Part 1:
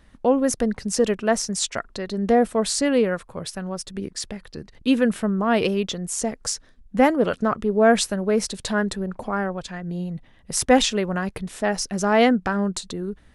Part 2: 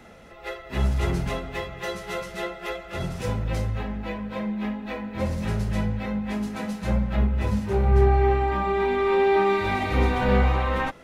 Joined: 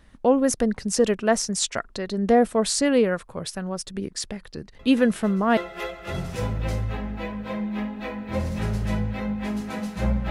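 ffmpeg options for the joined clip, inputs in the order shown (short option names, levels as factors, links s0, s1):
-filter_complex "[1:a]asplit=2[s0][s1];[0:a]apad=whole_dur=10.3,atrim=end=10.3,atrim=end=5.572[s2];[s1]atrim=start=2.428:end=7.16[s3];[s0]atrim=start=1.65:end=2.43,asetpts=PTS-STARTPTS,volume=0.224,afade=t=in:d=0.004:c=hsin,afade=t=out:st=0.776:d=0.004:c=hsin,adelay=4790[s4];[s2][s3]acrossfade=d=0.004:c1=hsin:c2=hsin[s5];[s5][s4]amix=inputs=2:normalize=0"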